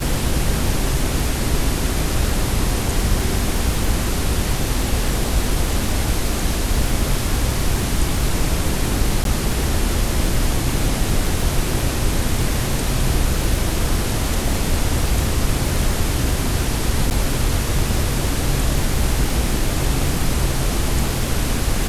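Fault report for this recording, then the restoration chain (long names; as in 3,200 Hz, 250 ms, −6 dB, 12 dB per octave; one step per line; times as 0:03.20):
surface crackle 55 per second −23 dBFS
0:09.24–0:09.25: drop-out 12 ms
0:17.10–0:17.11: drop-out 9.5 ms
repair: click removal
repair the gap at 0:09.24, 12 ms
repair the gap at 0:17.10, 9.5 ms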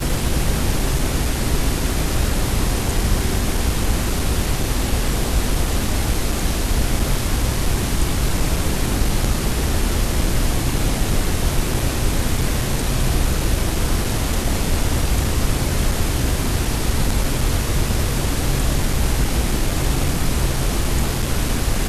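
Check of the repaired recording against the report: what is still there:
none of them is left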